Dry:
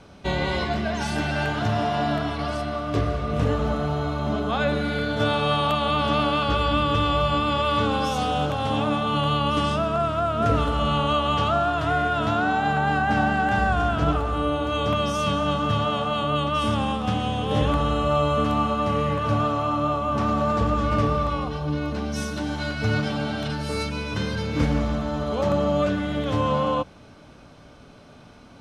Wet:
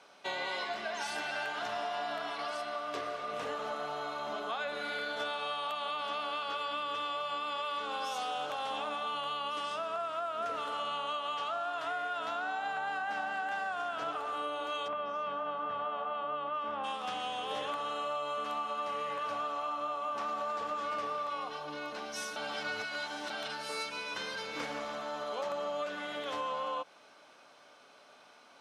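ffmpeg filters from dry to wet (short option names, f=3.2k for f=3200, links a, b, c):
-filter_complex "[0:a]asplit=3[a][b][c];[a]afade=t=out:st=14.87:d=0.02[d];[b]lowpass=1.6k,afade=t=in:st=14.87:d=0.02,afade=t=out:st=16.83:d=0.02[e];[c]afade=t=in:st=16.83:d=0.02[f];[d][e][f]amix=inputs=3:normalize=0,asplit=3[g][h][i];[g]atrim=end=22.362[j];[h]atrim=start=22.358:end=23.302,asetpts=PTS-STARTPTS,areverse[k];[i]atrim=start=23.298[l];[j][k]acrossfade=d=0.004:c1=hsin:c2=hsin[m];[m][l]acrossfade=d=0.004:c1=hsin:c2=hsin,highpass=660,acompressor=threshold=-28dB:ratio=6,volume=-4.5dB"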